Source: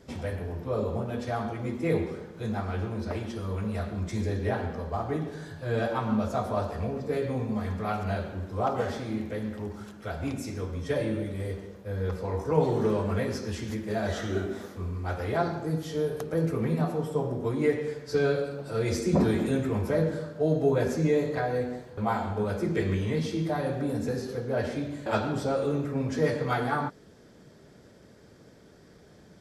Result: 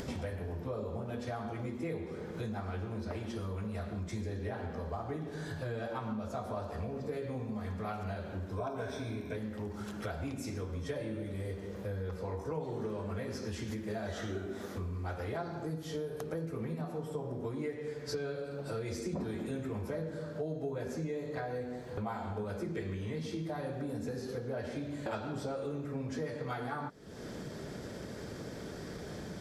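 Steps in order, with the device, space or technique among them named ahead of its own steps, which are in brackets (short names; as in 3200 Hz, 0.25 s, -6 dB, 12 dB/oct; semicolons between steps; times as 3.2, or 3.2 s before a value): 8.57–9.37 ripple EQ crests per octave 1.6, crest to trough 13 dB; upward and downward compression (upward compressor, threshold -38 dBFS; compressor 6:1, threshold -40 dBFS, peak gain reduction 20.5 dB); gain +4 dB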